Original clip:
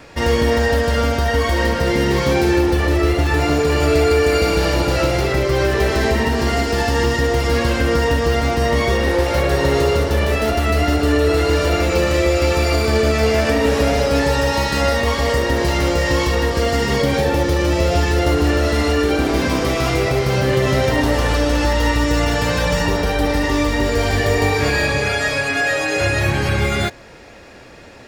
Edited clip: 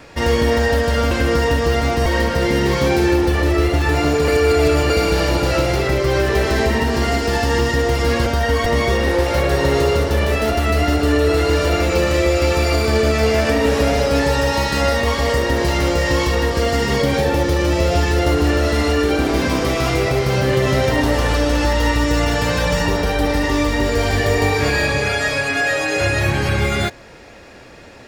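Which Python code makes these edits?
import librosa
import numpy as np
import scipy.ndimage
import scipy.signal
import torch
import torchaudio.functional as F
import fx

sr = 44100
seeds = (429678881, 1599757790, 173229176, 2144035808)

y = fx.edit(x, sr, fx.swap(start_s=1.11, length_s=0.4, other_s=7.71, other_length_s=0.95),
    fx.reverse_span(start_s=3.73, length_s=0.62), tone=tone)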